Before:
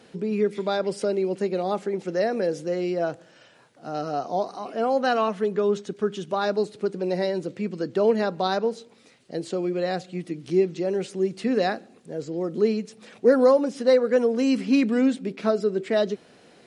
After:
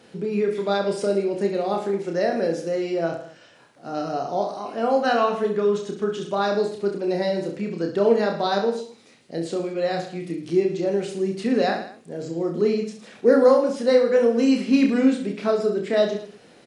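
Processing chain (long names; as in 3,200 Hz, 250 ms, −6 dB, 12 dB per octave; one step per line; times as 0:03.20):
reverse bouncing-ball delay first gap 30 ms, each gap 1.2×, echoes 5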